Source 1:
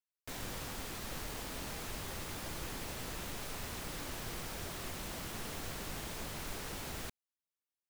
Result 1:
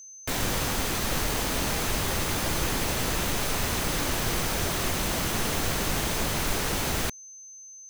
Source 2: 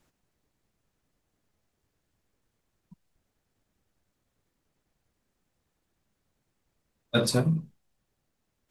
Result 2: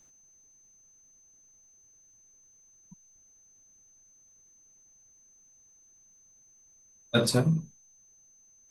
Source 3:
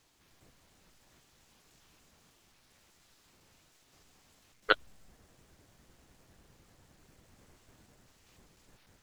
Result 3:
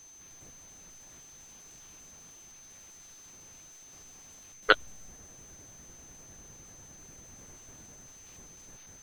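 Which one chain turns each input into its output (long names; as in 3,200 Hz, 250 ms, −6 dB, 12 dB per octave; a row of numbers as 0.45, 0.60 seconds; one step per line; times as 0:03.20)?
steady tone 6,200 Hz −58 dBFS
boost into a limiter +9.5 dB
loudness normalisation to −27 LKFS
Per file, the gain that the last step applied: +5.5, −9.5, −2.0 decibels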